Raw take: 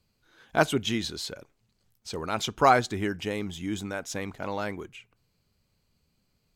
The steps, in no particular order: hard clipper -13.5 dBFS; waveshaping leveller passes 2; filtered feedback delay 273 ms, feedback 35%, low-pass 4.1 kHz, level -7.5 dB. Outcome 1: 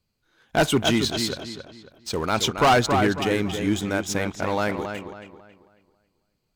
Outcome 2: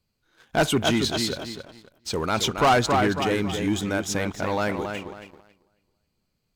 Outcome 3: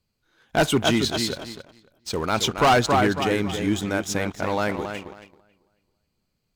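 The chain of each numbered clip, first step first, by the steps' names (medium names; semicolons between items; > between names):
waveshaping leveller > filtered feedback delay > hard clipper; filtered feedback delay > hard clipper > waveshaping leveller; filtered feedback delay > waveshaping leveller > hard clipper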